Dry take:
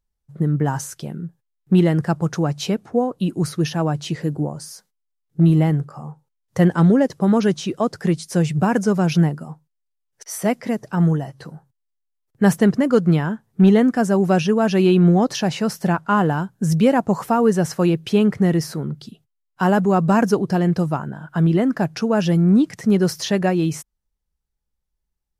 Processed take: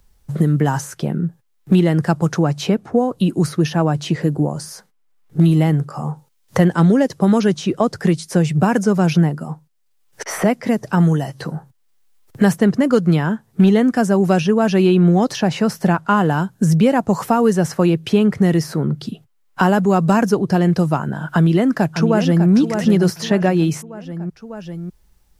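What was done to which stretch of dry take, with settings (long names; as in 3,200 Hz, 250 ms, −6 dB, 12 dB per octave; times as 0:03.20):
0:21.32–0:22.49: delay throw 600 ms, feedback 35%, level −7.5 dB
whole clip: multiband upward and downward compressor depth 70%; level +2 dB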